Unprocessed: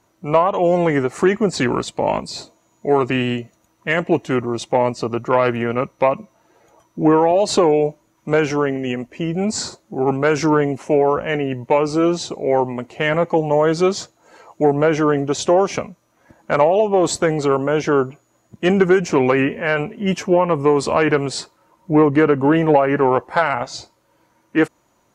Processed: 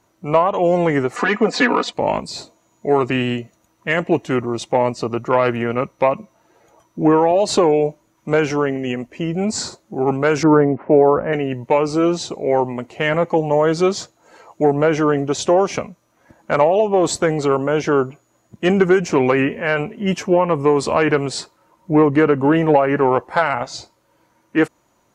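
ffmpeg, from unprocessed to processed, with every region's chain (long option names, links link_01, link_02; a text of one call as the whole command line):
ffmpeg -i in.wav -filter_complex "[0:a]asettb=1/sr,asplit=3[link_01][link_02][link_03];[link_01]atrim=end=1.164[link_04];[link_02]atrim=start=1.16:end=1.93,asetpts=PTS-STARTPTS,afade=type=in:duration=0.004:curve=qsin,afade=type=out:start_time=0.766:duration=0.004:curve=qsin,asplit=2[link_05][link_06];[link_06]highpass=frequency=720:poles=1,volume=12dB,asoftclip=type=tanh:threshold=-4dB[link_07];[link_05][link_07]amix=inputs=2:normalize=0,lowpass=frequency=2700:poles=1,volume=-6dB,acrossover=split=180 6700:gain=0.158 1 0.178[link_08][link_09][link_10];[link_08][link_09][link_10]amix=inputs=3:normalize=0,aecho=1:1:4.1:0.99,atrim=end_sample=33957[link_11];[link_03]atrim=start=1.926[link_12];[link_04][link_11]acrossfade=duration=0.004:curve1=hsin:curve2=qsin[link_13];[link_13][link_12]acrossfade=duration=0.004:curve1=qsin:curve2=hsin,asettb=1/sr,asplit=3[link_14][link_15][link_16];[link_14]atrim=end=10.434[link_17];[link_15]atrim=start=10.43:end=11.33,asetpts=PTS-STARTPTS,afade=type=in:duration=0.004:curve=qsin,afade=type=out:start_time=0.896:duration=0.004:curve=qsin,lowpass=frequency=1800:width=0.5412,lowpass=frequency=1800:width=1.3066,equalizer=frequency=300:width_type=o:width=2.6:gain=4[link_18];[link_16]atrim=start=11.326[link_19];[link_17][link_18]acrossfade=duration=0.004:curve1=hsin:curve2=qsin[link_20];[link_20][link_19]acrossfade=duration=0.004:curve1=qsin:curve2=hsin" out.wav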